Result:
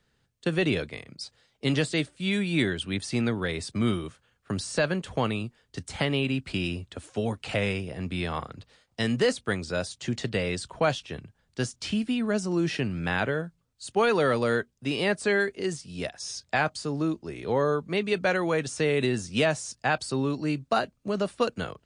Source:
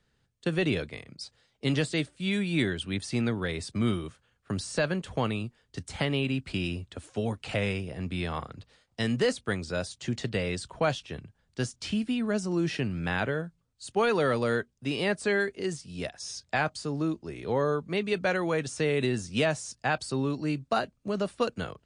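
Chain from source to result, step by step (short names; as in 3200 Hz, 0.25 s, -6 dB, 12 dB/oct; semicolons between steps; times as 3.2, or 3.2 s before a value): low shelf 150 Hz -3 dB; gain +2.5 dB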